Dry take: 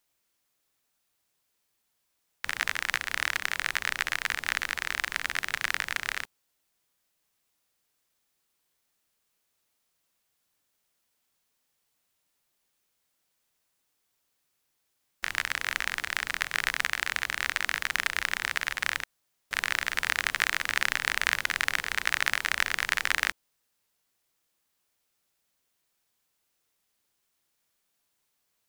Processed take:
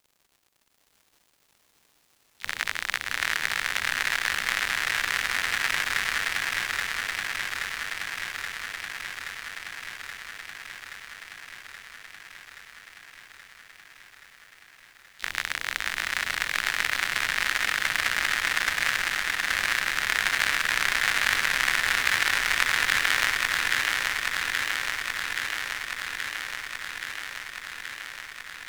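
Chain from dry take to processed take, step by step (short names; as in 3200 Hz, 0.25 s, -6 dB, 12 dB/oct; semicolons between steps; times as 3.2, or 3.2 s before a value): harmoniser +3 st -16 dB, +12 st -15 dB; crackle 150/s -48 dBFS; swung echo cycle 0.826 s, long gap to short 3:1, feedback 75%, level -3 dB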